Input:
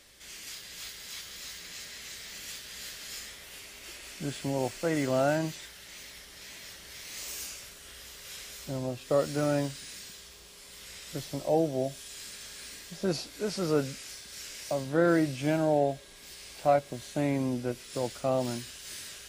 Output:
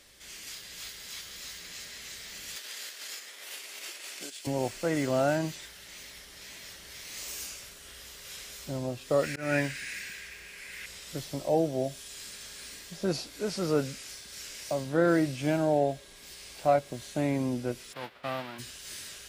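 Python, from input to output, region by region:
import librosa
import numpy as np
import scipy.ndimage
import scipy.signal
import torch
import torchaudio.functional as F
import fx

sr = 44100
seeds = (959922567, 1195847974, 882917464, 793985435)

y = fx.chain(x, sr, fx.bessel_highpass(hz=420.0, order=4),
    fx.transient(attack_db=10, sustain_db=-10),
    fx.band_squash(depth_pct=100), at=(2.56, 4.47))
y = fx.chain(y, sr, fx.band_shelf(hz=2000.0, db=14.0, octaves=1.0),
    fx.auto_swell(attack_ms=194.0), at=(9.23, 10.86))
y = fx.envelope_flatten(y, sr, power=0.3, at=(17.92, 18.58), fade=0.02)
y = fx.highpass(y, sr, hz=370.0, slope=6, at=(17.92, 18.58), fade=0.02)
y = fx.air_absorb(y, sr, metres=420.0, at=(17.92, 18.58), fade=0.02)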